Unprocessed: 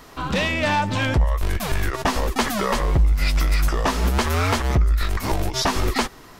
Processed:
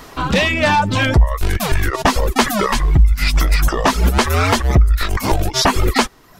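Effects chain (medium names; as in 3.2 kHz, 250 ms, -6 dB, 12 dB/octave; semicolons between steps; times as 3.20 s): reverb removal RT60 0.82 s; 2.66–3.34 s: peaking EQ 530 Hz -13.5 dB 0.79 oct; trim +7.5 dB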